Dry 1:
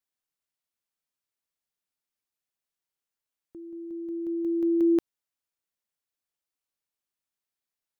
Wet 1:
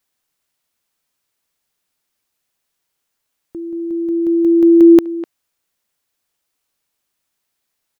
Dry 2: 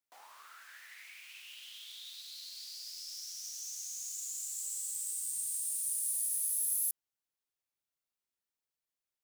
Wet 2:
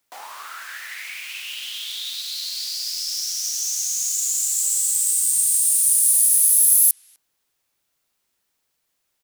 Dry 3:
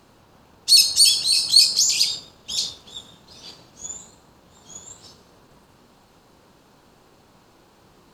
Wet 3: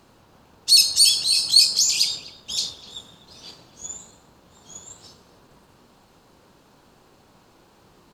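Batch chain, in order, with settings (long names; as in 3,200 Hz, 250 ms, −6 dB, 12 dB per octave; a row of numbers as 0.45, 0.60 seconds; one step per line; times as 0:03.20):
far-end echo of a speakerphone 250 ms, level −15 dB
normalise the peak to −2 dBFS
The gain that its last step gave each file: +15.0, +18.0, −1.0 decibels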